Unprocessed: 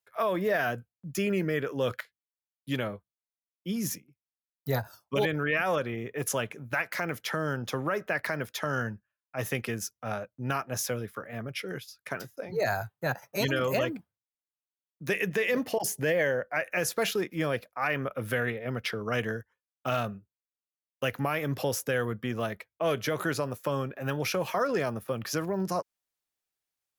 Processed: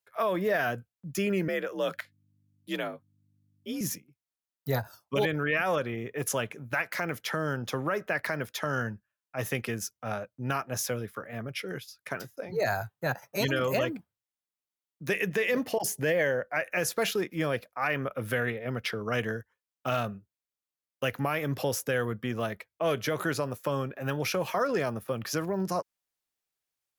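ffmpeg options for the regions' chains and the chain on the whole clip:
-filter_complex "[0:a]asettb=1/sr,asplit=3[a][b][c];[a]atrim=end=1.484[d];[b]atrim=start=1.48:end=3.81,asetpts=PTS-STARTPTS,afade=t=in:d=0.004:c=qsin,afade=t=out:st=2.326:d=0.004:c=qsin,highpass=f=250:p=1,aeval=exprs='val(0)+0.000398*(sin(2*PI*50*n/s)+sin(2*PI*2*50*n/s)/2+sin(2*PI*3*50*n/s)/3+sin(2*PI*4*50*n/s)/4+sin(2*PI*5*50*n/s)/5)':c=same,afreqshift=51[e];[c]atrim=start=3.806[f];[d][e]acrossfade=d=0.004:c1=hsin:c2=qsin[g];[g][f]acrossfade=d=0.004:c1=qsin:c2=hsin"

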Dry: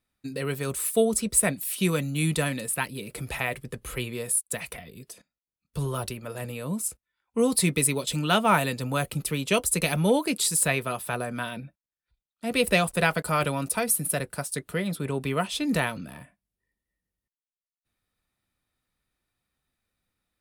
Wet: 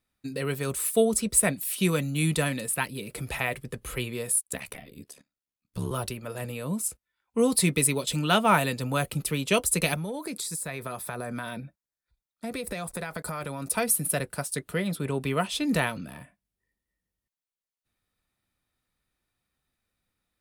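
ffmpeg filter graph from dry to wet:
-filter_complex "[0:a]asettb=1/sr,asplit=3[a][b][c];[a]atrim=end=4.434[d];[b]atrim=start=4.43:end=5.91,asetpts=PTS-STARTPTS,afade=t=in:d=0.004:c=qsin,afade=t=out:st=1.476:d=0.004:c=qsin,equalizer=f=240:w=6.6:g=8,aeval=exprs='val(0)*sin(2*PI*35*n/s)':c=same[e];[c]atrim=start=5.906[f];[d][e]acrossfade=d=0.004:c1=hsin:c2=qsin[g];[g][f]acrossfade=d=0.004:c1=qsin:c2=hsin,asettb=1/sr,asplit=3[h][i][j];[h]atrim=end=9.944[k];[i]atrim=start=9.94:end=13.7,asetpts=PTS-STARTPTS,afade=t=in:d=0.004:c=qsin,afade=t=out:st=3.756:d=0.004:c=qsin,equalizer=f=2.9k:w=6.2:g=-12,acompressor=threshold=-29dB:ratio=16:attack=3.2:release=140:knee=1:detection=peak[l];[j]atrim=start=13.696[m];[k][l]acrossfade=d=0.004:c1=hsin:c2=qsin[n];[n][m]acrossfade=d=0.004:c1=qsin:c2=hsin"

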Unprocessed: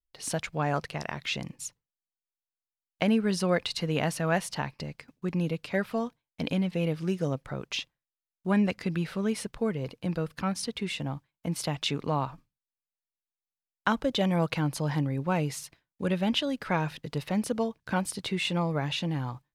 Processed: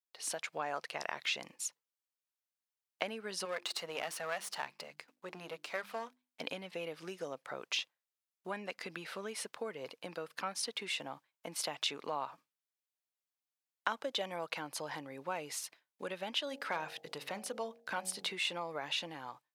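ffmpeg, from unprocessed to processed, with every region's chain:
-filter_complex "[0:a]asettb=1/sr,asplit=3[a][b][c];[a]atrim=end=3.454[d];[b]atrim=start=3.45:end=6.41,asetpts=PTS-STARTPTS,afade=t=in:d=0.004:c=qsin,afade=t=out:st=2.956:d=0.004:c=qsin,aeval=exprs='if(lt(val(0),0),0.251*val(0),val(0))':c=same,bandreject=f=50:t=h:w=6,bandreject=f=100:t=h:w=6,bandreject=f=150:t=h:w=6,bandreject=f=200:t=h:w=6,bandreject=f=250:t=h:w=6,bandreject=f=300:t=h:w=6,bandreject=f=350:t=h:w=6[e];[c]atrim=start=6.406[f];[d][e]acrossfade=d=0.004:c1=hsin:c2=qsin[g];[g][f]acrossfade=d=0.004:c1=qsin:c2=hsin,asettb=1/sr,asplit=3[h][i][j];[h]atrim=end=16.474[k];[i]atrim=start=16.47:end=18.3,asetpts=PTS-STARTPTS,afade=t=in:d=0.004:c=qsin,afade=t=out:st=1.826:d=0.004:c=qsin,bandreject=f=46.55:t=h:w=4,bandreject=f=93.1:t=h:w=4,bandreject=f=139.65:t=h:w=4,bandreject=f=186.2:t=h:w=4,bandreject=f=232.75:t=h:w=4,bandreject=f=279.3:t=h:w=4,bandreject=f=325.85:t=h:w=4,bandreject=f=372.4:t=h:w=4,bandreject=f=418.95:t=h:w=4,bandreject=f=465.5:t=h:w=4,bandreject=f=512.05:t=h:w=4,bandreject=f=558.6:t=h:w=4,bandreject=f=605.15:t=h:w=4,bandreject=f=651.7:t=h:w=4,bandreject=f=698.25:t=h:w=4,bandreject=f=744.8:t=h:w=4,bandreject=f=791.35:t=h:w=4,bandreject=f=837.9:t=h:w=4,asubboost=boost=3:cutoff=220,aeval=exprs='clip(val(0),-1,0.075)':c=same[l];[j]atrim=start=18.296[m];[k][l]acrossfade=d=0.004:c1=hsin:c2=qsin[n];[n][m]acrossfade=d=0.004:c1=qsin:c2=hsin,acompressor=threshold=-30dB:ratio=4,highpass=530,dynaudnorm=f=120:g=7:m=3dB,volume=-3.5dB"

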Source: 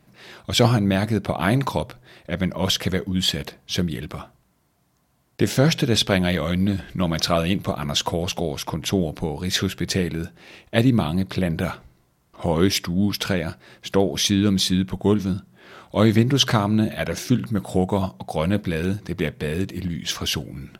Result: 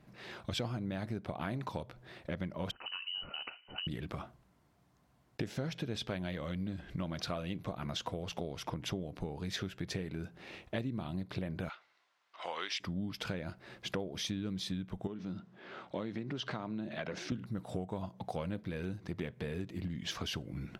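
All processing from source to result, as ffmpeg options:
-filter_complex "[0:a]asettb=1/sr,asplit=3[a][b][c];[a]atrim=end=2.714[d];[b]atrim=start=2.71:end=3.87,asetpts=PTS-STARTPTS,afade=t=in:d=0.004:c=qsin,afade=t=out:st=1.156:d=0.004:c=qsin,acompressor=threshold=-30dB:ratio=4:attack=3.2:release=140:knee=1:detection=peak,lowpass=f=2.6k:t=q:w=0.5098,lowpass=f=2.6k:t=q:w=0.6013,lowpass=f=2.6k:t=q:w=0.9,lowpass=f=2.6k:t=q:w=2.563,afreqshift=-3100[e];[c]atrim=start=3.866[f];[d][e]acrossfade=d=0.004:c1=hsin:c2=qsin[g];[g][f]acrossfade=d=0.004:c1=qsin:c2=hsin,asettb=1/sr,asplit=3[h][i][j];[h]atrim=end=11.694[k];[i]atrim=start=11.69:end=12.8,asetpts=PTS-STARTPTS,afade=t=in:d=0.004:c=qsin,afade=t=out:st=1.106:d=0.004:c=qsin,highpass=750,lowpass=4.1k,tiltshelf=f=1.2k:g=-7.5[l];[j]atrim=start=12.796[m];[k][l]acrossfade=d=0.004:c1=hsin:c2=qsin[n];[n][m]acrossfade=d=0.004:c1=qsin:c2=hsin,asettb=1/sr,asplit=3[o][p][q];[o]atrim=end=15.074[r];[p]atrim=start=15.07:end=17.32,asetpts=PTS-STARTPTS,afade=t=in:d=0.004:c=qsin,afade=t=out:st=2.246:d=0.004:c=qsin,acompressor=threshold=-27dB:ratio=2:attack=3.2:release=140:knee=1:detection=peak,highpass=160,lowpass=5.1k[s];[q]atrim=start=17.316[t];[r][s]acrossfade=d=0.004:c1=hsin:c2=qsin[u];[u][t]acrossfade=d=0.004:c1=qsin:c2=hsin,lowpass=f=3.4k:p=1,acompressor=threshold=-32dB:ratio=6,volume=-3.5dB"

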